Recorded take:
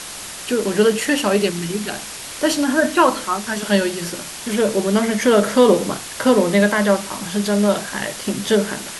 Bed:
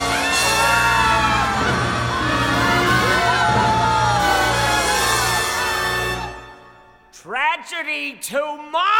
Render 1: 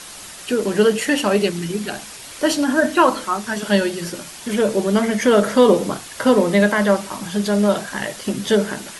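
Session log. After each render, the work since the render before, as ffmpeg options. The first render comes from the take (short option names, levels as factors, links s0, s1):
-af "afftdn=nr=6:nf=-33"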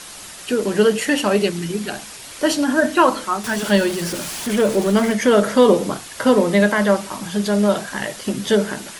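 -filter_complex "[0:a]asettb=1/sr,asplit=3[s0][s1][s2];[s0]atrim=end=3.444[s3];[s1]atrim=start=3.44:end=5.13,asetpts=PTS-STARTPTS,afade=t=in:d=0.004:c=qsin,afade=t=out:st=1.686:d=0.004:c=qsin,aeval=exprs='val(0)+0.5*0.0473*sgn(val(0))':c=same[s4];[s2]atrim=start=5.126[s5];[s3][s4]acrossfade=d=0.004:c1=hsin:c2=qsin[s6];[s6][s5]acrossfade=d=0.004:c1=qsin:c2=hsin"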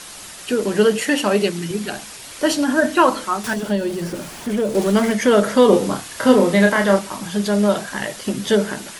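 -filter_complex "[0:a]asettb=1/sr,asplit=3[s0][s1][s2];[s0]atrim=end=1.024[s3];[s1]atrim=start=1.02:end=1.71,asetpts=PTS-STARTPTS,afade=t=in:d=0.004:c=qsin,afade=t=out:st=0.686:d=0.004:c=qsin,highpass=120[s4];[s2]atrim=start=1.706[s5];[s3][s4]acrossfade=d=0.004:c1=hsin:c2=qsin[s6];[s6][s5]acrossfade=d=0.004:c1=qsin:c2=hsin,asettb=1/sr,asplit=3[s7][s8][s9];[s7]atrim=end=3.534[s10];[s8]atrim=start=3.53:end=4.75,asetpts=PTS-STARTPTS,afade=t=in:d=0.004:c=qsin,afade=t=out:st=1.216:d=0.004:c=qsin,acrossover=split=760|2300[s11][s12][s13];[s11]acompressor=threshold=0.141:ratio=4[s14];[s12]acompressor=threshold=0.01:ratio=4[s15];[s13]acompressor=threshold=0.0126:ratio=4[s16];[s14][s15][s16]amix=inputs=3:normalize=0[s17];[s9]atrim=start=4.746[s18];[s10][s17]acrossfade=d=0.004:c1=hsin:c2=qsin[s19];[s19][s18]acrossfade=d=0.004:c1=qsin:c2=hsin,asettb=1/sr,asplit=3[s20][s21][s22];[s20]atrim=end=5.694[s23];[s21]atrim=start=5.69:end=6.99,asetpts=PTS-STARTPTS,afade=t=in:d=0.004:c=qsin,afade=t=out:st=1.296:d=0.004:c=qsin,asplit=2[s24][s25];[s25]adelay=31,volume=0.631[s26];[s24][s26]amix=inputs=2:normalize=0,atrim=end_sample=57330[s27];[s22]atrim=start=6.986[s28];[s23][s27]acrossfade=d=0.004:c1=hsin:c2=qsin[s29];[s29][s28]acrossfade=d=0.004:c1=qsin:c2=hsin"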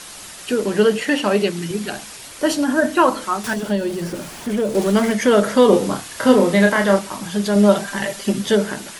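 -filter_complex "[0:a]asettb=1/sr,asplit=3[s0][s1][s2];[s0]atrim=end=0.624[s3];[s1]atrim=start=0.62:end=1.57,asetpts=PTS-STARTPTS,afade=t=in:d=0.004:c=qsin,afade=t=out:st=0.946:d=0.004:c=qsin,acrossover=split=4500[s4][s5];[s5]acompressor=threshold=0.0178:ratio=4:attack=1:release=60[s6];[s4][s6]amix=inputs=2:normalize=0[s7];[s2]atrim=start=1.566[s8];[s3][s7]acrossfade=d=0.004:c1=hsin:c2=qsin[s9];[s9][s8]acrossfade=d=0.004:c1=qsin:c2=hsin,asettb=1/sr,asplit=3[s10][s11][s12];[s10]atrim=end=2.284[s13];[s11]atrim=start=2.28:end=3.22,asetpts=PTS-STARTPTS,afade=t=in:d=0.004:c=qsin,afade=t=out:st=0.936:d=0.004:c=qsin,equalizer=f=3600:w=0.51:g=-2.5[s14];[s12]atrim=start=3.216[s15];[s13][s14]acrossfade=d=0.004:c1=hsin:c2=qsin[s16];[s16][s15]acrossfade=d=0.004:c1=qsin:c2=hsin,asettb=1/sr,asplit=3[s17][s18][s19];[s17]atrim=end=7.554[s20];[s18]atrim=start=7.55:end=8.42,asetpts=PTS-STARTPTS,afade=t=in:d=0.004:c=qsin,afade=t=out:st=0.866:d=0.004:c=qsin,aecho=1:1:5.1:0.62,atrim=end_sample=38367[s21];[s19]atrim=start=8.416[s22];[s20][s21]acrossfade=d=0.004:c1=hsin:c2=qsin[s23];[s23][s22]acrossfade=d=0.004:c1=qsin:c2=hsin"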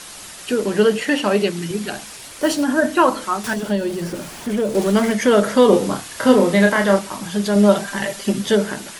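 -filter_complex "[0:a]asettb=1/sr,asplit=3[s0][s1][s2];[s0]atrim=end=2.064[s3];[s1]atrim=start=2.06:end=2.63,asetpts=PTS-STARTPTS,afade=t=in:d=0.004:c=qsin,afade=t=out:st=0.566:d=0.004:c=qsin,acrusher=bits=6:mode=log:mix=0:aa=0.000001[s4];[s2]atrim=start=2.626[s5];[s3][s4]acrossfade=d=0.004:c1=hsin:c2=qsin[s6];[s6][s5]acrossfade=d=0.004:c1=qsin:c2=hsin"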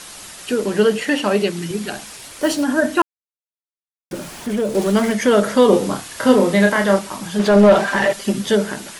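-filter_complex "[0:a]asplit=3[s0][s1][s2];[s0]afade=t=out:st=7.38:d=0.02[s3];[s1]asplit=2[s4][s5];[s5]highpass=f=720:p=1,volume=11.2,asoftclip=type=tanh:threshold=0.891[s6];[s4][s6]amix=inputs=2:normalize=0,lowpass=f=1100:p=1,volume=0.501,afade=t=in:st=7.38:d=0.02,afade=t=out:st=8.12:d=0.02[s7];[s2]afade=t=in:st=8.12:d=0.02[s8];[s3][s7][s8]amix=inputs=3:normalize=0,asplit=3[s9][s10][s11];[s9]atrim=end=3.02,asetpts=PTS-STARTPTS,afade=t=out:st=3.016:d=0.004:c=hsin[s12];[s10]atrim=start=3.02:end=4.11,asetpts=PTS-STARTPTS,volume=0[s13];[s11]atrim=start=4.11,asetpts=PTS-STARTPTS,afade=t=in:d=0.004:c=hsin[s14];[s12][s13][s14]concat=n=3:v=0:a=1"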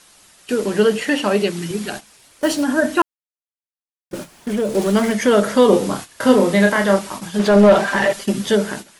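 -af "agate=range=0.224:threshold=0.0355:ratio=16:detection=peak"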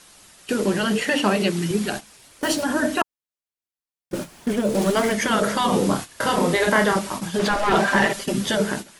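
-af "afftfilt=real='re*lt(hypot(re,im),1.12)':imag='im*lt(hypot(re,im),1.12)':win_size=1024:overlap=0.75,lowshelf=f=340:g=3"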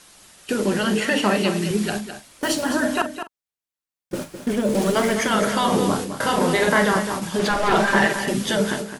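-filter_complex "[0:a]asplit=2[s0][s1];[s1]adelay=43,volume=0.224[s2];[s0][s2]amix=inputs=2:normalize=0,aecho=1:1:209:0.335"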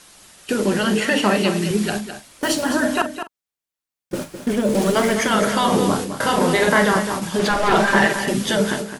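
-af "volume=1.26"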